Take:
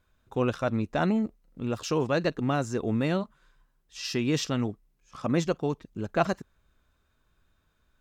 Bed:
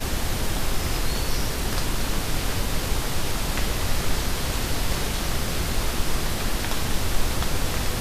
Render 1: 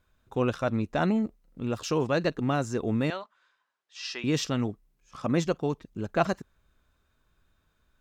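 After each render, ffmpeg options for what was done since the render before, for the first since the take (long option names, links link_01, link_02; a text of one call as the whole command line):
ffmpeg -i in.wav -filter_complex "[0:a]asettb=1/sr,asplit=3[link_01][link_02][link_03];[link_01]atrim=end=3.104[link_04];[link_02]atrim=start=3.1:end=4.24,asetpts=PTS-STARTPTS,afade=type=in:duration=0.004:curve=qsin,afade=type=out:start_time=1.136:duration=0.004:curve=qsin,highpass=740,lowpass=5400[link_05];[link_03]atrim=start=4.236[link_06];[link_04][link_05]acrossfade=duration=0.004:curve1=hsin:curve2=qsin[link_07];[link_07][link_06]acrossfade=duration=0.004:curve1=qsin:curve2=hsin" out.wav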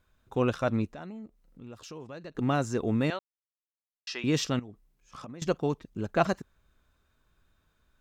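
ffmpeg -i in.wav -filter_complex "[0:a]asettb=1/sr,asplit=3[link_01][link_02][link_03];[link_01]atrim=end=0.904[link_04];[link_02]atrim=start=0.9:end=2.35,asetpts=PTS-STARTPTS,afade=type=in:duration=0.004:curve=qsin,afade=type=out:start_time=1.446:duration=0.004:curve=qsin,acompressor=threshold=-53dB:ratio=2:attack=3.2:release=140:knee=1:detection=peak[link_05];[link_03]atrim=start=2.346[link_06];[link_04][link_05]acrossfade=duration=0.004:curve1=hsin:curve2=qsin[link_07];[link_07][link_06]acrossfade=duration=0.004:curve1=qsin:curve2=hsin,asettb=1/sr,asplit=3[link_08][link_09][link_10];[link_08]atrim=end=4.594[link_11];[link_09]atrim=start=4.59:end=5.42,asetpts=PTS-STARTPTS,afade=type=in:duration=0.004:curve=qsin,afade=type=out:start_time=0.826:duration=0.004:curve=qsin,acompressor=threshold=-39dB:ratio=12:attack=3.2:release=140:knee=1:detection=peak[link_12];[link_10]atrim=start=5.416[link_13];[link_11][link_12]acrossfade=duration=0.004:curve1=hsin:curve2=qsin[link_14];[link_14][link_13]acrossfade=duration=0.004:curve1=qsin:curve2=hsin,asplit=3[link_15][link_16][link_17];[link_15]atrim=end=3.19,asetpts=PTS-STARTPTS,afade=type=out:start_time=3.186:duration=0.004:curve=hsin[link_18];[link_16]atrim=start=3.19:end=4.07,asetpts=PTS-STARTPTS,volume=0[link_19];[link_17]atrim=start=4.07,asetpts=PTS-STARTPTS,afade=type=in:duration=0.004:curve=hsin[link_20];[link_18][link_19][link_20]concat=n=3:v=0:a=1" out.wav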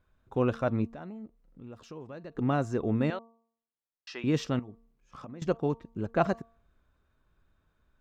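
ffmpeg -i in.wav -af "highshelf=frequency=2900:gain=-12,bandreject=frequency=228.8:width_type=h:width=4,bandreject=frequency=457.6:width_type=h:width=4,bandreject=frequency=686.4:width_type=h:width=4,bandreject=frequency=915.2:width_type=h:width=4,bandreject=frequency=1144:width_type=h:width=4" out.wav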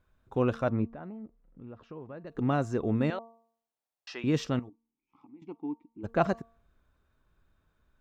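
ffmpeg -i in.wav -filter_complex "[0:a]asettb=1/sr,asplit=3[link_01][link_02][link_03];[link_01]atrim=end=0.694[link_04];[link_02]atrim=start=0.69:end=2.27,asetpts=PTS-STARTPTS,afade=type=in:duration=0.004:curve=qsin,afade=type=out:start_time=1.576:duration=0.004:curve=qsin,lowpass=2100[link_05];[link_03]atrim=start=2.266[link_06];[link_04][link_05]acrossfade=duration=0.004:curve1=hsin:curve2=qsin[link_07];[link_07][link_06]acrossfade=duration=0.004:curve1=qsin:curve2=hsin,asettb=1/sr,asplit=3[link_08][link_09][link_10];[link_08]atrim=end=3.184[link_11];[link_09]atrim=start=3.18:end=4.15,asetpts=PTS-STARTPTS,afade=type=in:duration=0.004:curve=qsin,afade=type=out:start_time=0.966:duration=0.004:curve=qsin,equalizer=frequency=720:width_type=o:width=0.94:gain=10.5[link_12];[link_10]atrim=start=4.146[link_13];[link_11][link_12]acrossfade=duration=0.004:curve1=hsin:curve2=qsin[link_14];[link_14][link_13]acrossfade=duration=0.004:curve1=qsin:curve2=hsin,asplit=3[link_15][link_16][link_17];[link_15]afade=type=out:start_time=4.68:duration=0.02[link_18];[link_16]asplit=3[link_19][link_20][link_21];[link_19]bandpass=frequency=300:width_type=q:width=8,volume=0dB[link_22];[link_20]bandpass=frequency=870:width_type=q:width=8,volume=-6dB[link_23];[link_21]bandpass=frequency=2240:width_type=q:width=8,volume=-9dB[link_24];[link_22][link_23][link_24]amix=inputs=3:normalize=0,afade=type=in:start_time=4.68:duration=0.02,afade=type=out:start_time=6.03:duration=0.02[link_25];[link_17]afade=type=in:start_time=6.03:duration=0.02[link_26];[link_18][link_25][link_26]amix=inputs=3:normalize=0" out.wav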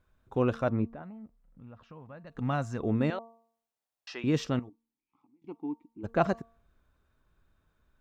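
ffmpeg -i in.wav -filter_complex "[0:a]asettb=1/sr,asplit=3[link_01][link_02][link_03];[link_01]atrim=end=1.024[link_04];[link_02]atrim=start=1.02:end=2.8,asetpts=PTS-STARTPTS,afade=type=in:duration=0.004:curve=qsin,afade=type=out:start_time=1.776:duration=0.004:curve=qsin,equalizer=frequency=370:width_type=o:width=0.77:gain=-13[link_05];[link_03]atrim=start=2.796[link_06];[link_04][link_05]acrossfade=duration=0.004:curve1=hsin:curve2=qsin[link_07];[link_07][link_06]acrossfade=duration=0.004:curve1=qsin:curve2=hsin,asplit=2[link_08][link_09];[link_08]atrim=end=5.44,asetpts=PTS-STARTPTS,afade=type=out:start_time=4.62:duration=0.82:silence=0.0749894[link_10];[link_09]atrim=start=5.44,asetpts=PTS-STARTPTS,afade=type=in:duration=0.004:curve=hsin:silence=0.0749894[link_11];[link_10][link_11]concat=n=2:v=0:a=1" out.wav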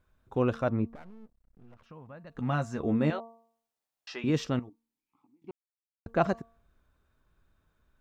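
ffmpeg -i in.wav -filter_complex "[0:a]asettb=1/sr,asplit=3[link_01][link_02][link_03];[link_01]atrim=end=0.954[link_04];[link_02]atrim=start=0.95:end=1.86,asetpts=PTS-STARTPTS,afade=type=in:duration=0.004:curve=qsin,afade=type=out:start_time=0.906:duration=0.004:curve=qsin,aeval=exprs='max(val(0),0)':channel_layout=same[link_05];[link_03]atrim=start=1.856[link_06];[link_04][link_05]acrossfade=duration=0.004:curve1=hsin:curve2=qsin[link_07];[link_07][link_06]acrossfade=duration=0.004:curve1=qsin:curve2=hsin,asettb=1/sr,asplit=3[link_08][link_09][link_10];[link_08]atrim=end=2.394[link_11];[link_09]atrim=start=2.39:end=4.3,asetpts=PTS-STARTPTS,afade=type=in:duration=0.004:curve=qsin,afade=type=out:start_time=1.906:duration=0.004:curve=qsin,asplit=2[link_12][link_13];[link_13]adelay=13,volume=-7dB[link_14];[link_12][link_14]amix=inputs=2:normalize=0,atrim=end_sample=84231[link_15];[link_10]atrim=start=4.296[link_16];[link_11][link_15]acrossfade=duration=0.004:curve1=hsin:curve2=qsin[link_17];[link_17][link_16]acrossfade=duration=0.004:curve1=qsin:curve2=hsin,asplit=3[link_18][link_19][link_20];[link_18]atrim=end=5.51,asetpts=PTS-STARTPTS,afade=type=out:start_time=5.506:duration=0.004:curve=hsin[link_21];[link_19]atrim=start=5.51:end=6.06,asetpts=PTS-STARTPTS,volume=0[link_22];[link_20]atrim=start=6.06,asetpts=PTS-STARTPTS,afade=type=in:duration=0.004:curve=hsin[link_23];[link_21][link_22][link_23]concat=n=3:v=0:a=1" out.wav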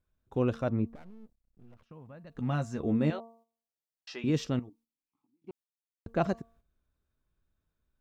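ffmpeg -i in.wav -af "agate=range=-9dB:threshold=-58dB:ratio=16:detection=peak,equalizer=frequency=1200:width=0.63:gain=-5.5" out.wav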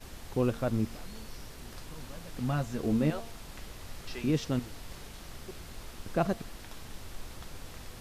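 ffmpeg -i in.wav -i bed.wav -filter_complex "[1:a]volume=-20dB[link_01];[0:a][link_01]amix=inputs=2:normalize=0" out.wav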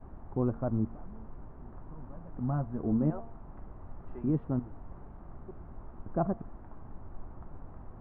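ffmpeg -i in.wav -af "lowpass=frequency=1100:width=0.5412,lowpass=frequency=1100:width=1.3066,equalizer=frequency=490:width=3.2:gain=-6.5" out.wav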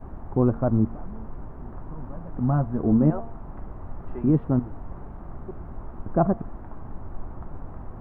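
ffmpeg -i in.wav -af "volume=9dB" out.wav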